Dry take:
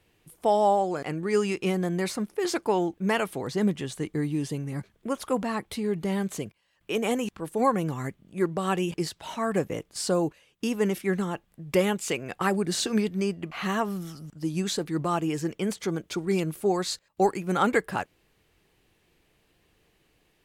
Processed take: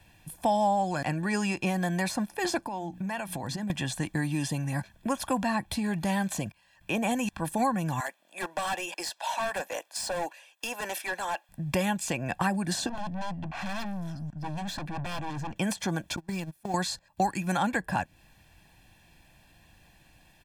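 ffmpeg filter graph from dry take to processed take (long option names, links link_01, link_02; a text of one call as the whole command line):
ffmpeg -i in.wav -filter_complex "[0:a]asettb=1/sr,asplit=3[link_01][link_02][link_03];[link_01]atrim=end=2.604[link_04];[link_02]atrim=start=2.6:end=3.7,asetpts=PTS-STARTPTS,afade=type=in:duration=0.004:curve=qsin,afade=type=out:start_time=1.096:duration=0.004:curve=qsin,bandreject=frequency=60:width_type=h:width=6,bandreject=frequency=120:width_type=h:width=6,bandreject=frequency=180:width_type=h:width=6,bandreject=frequency=240:width_type=h:width=6,bandreject=frequency=300:width_type=h:width=6,acompressor=threshold=-36dB:ratio=8:attack=3.2:release=140:knee=1:detection=peak[link_05];[link_03]atrim=start=3.696[link_06];[link_04][link_05]acrossfade=duration=0.004:curve1=hsin:curve2=qsin[link_07];[link_07][link_06]acrossfade=duration=0.004:curve1=qsin:curve2=hsin,asettb=1/sr,asplit=3[link_08][link_09][link_10];[link_08]atrim=end=8.004[link_11];[link_09]atrim=start=8:end=11.49,asetpts=PTS-STARTPTS,afade=type=in:duration=0.004:curve=qsin,afade=type=out:start_time=3.486:duration=0.004:curve=qsin,highpass=frequency=490:width=0.5412,highpass=frequency=490:width=1.3066,asoftclip=type=hard:threshold=-31dB[link_12];[link_10]atrim=start=11.486[link_13];[link_11][link_12]acrossfade=duration=0.004:curve1=hsin:curve2=qsin[link_14];[link_14][link_13]acrossfade=duration=0.004:curve1=qsin:curve2=hsin,asettb=1/sr,asplit=3[link_15][link_16][link_17];[link_15]atrim=end=12.894[link_18];[link_16]atrim=start=12.89:end=15.56,asetpts=PTS-STARTPTS,afade=type=in:duration=0.004:curve=qsin,afade=type=out:start_time=2.666:duration=0.004:curve=qsin,lowpass=frequency=1400:poles=1,aeval=exprs='0.0398*(abs(mod(val(0)/0.0398+3,4)-2)-1)':channel_layout=same,aeval=exprs='(tanh(100*val(0)+0.3)-tanh(0.3))/100':channel_layout=same[link_19];[link_17]atrim=start=15.556[link_20];[link_18][link_19]acrossfade=duration=0.004:curve1=hsin:curve2=qsin[link_21];[link_21][link_20]acrossfade=duration=0.004:curve1=qsin:curve2=hsin,asettb=1/sr,asplit=3[link_22][link_23][link_24];[link_22]atrim=end=16.164[link_25];[link_23]atrim=start=16.16:end=16.74,asetpts=PTS-STARTPTS,afade=type=in:duration=0.004:curve=qsin,afade=type=out:start_time=0.576:duration=0.004:curve=qsin,aeval=exprs='val(0)+0.5*0.0188*sgn(val(0))':channel_layout=same,agate=range=-36dB:threshold=-25dB:ratio=16:release=100:detection=peak,acompressor=threshold=-32dB:ratio=16:attack=3.2:release=140:knee=1:detection=peak[link_26];[link_24]atrim=start=16.736[link_27];[link_25][link_26]acrossfade=duration=0.004:curve1=hsin:curve2=qsin[link_28];[link_28][link_27]acrossfade=duration=0.004:curve1=qsin:curve2=hsin,aecho=1:1:1.2:0.82,acrossover=split=420|1100[link_29][link_30][link_31];[link_29]acompressor=threshold=-36dB:ratio=4[link_32];[link_30]acompressor=threshold=-38dB:ratio=4[link_33];[link_31]acompressor=threshold=-39dB:ratio=4[link_34];[link_32][link_33][link_34]amix=inputs=3:normalize=0,volume=5.5dB" out.wav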